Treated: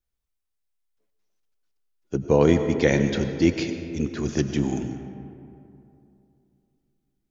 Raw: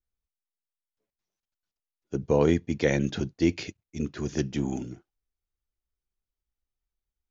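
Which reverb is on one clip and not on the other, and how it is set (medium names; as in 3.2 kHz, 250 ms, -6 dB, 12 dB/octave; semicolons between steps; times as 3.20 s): algorithmic reverb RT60 2.8 s, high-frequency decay 0.45×, pre-delay 60 ms, DRR 8 dB; trim +4 dB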